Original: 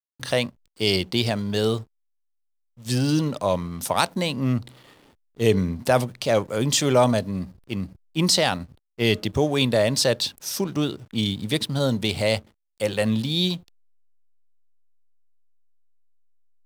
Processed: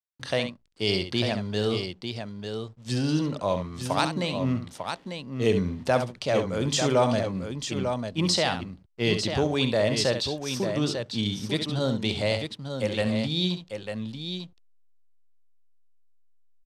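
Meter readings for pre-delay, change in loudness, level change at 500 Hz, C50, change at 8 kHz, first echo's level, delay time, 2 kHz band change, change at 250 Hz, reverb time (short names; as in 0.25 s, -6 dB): none, -4.0 dB, -3.0 dB, none, -6.5 dB, -9.0 dB, 67 ms, -3.0 dB, -3.0 dB, none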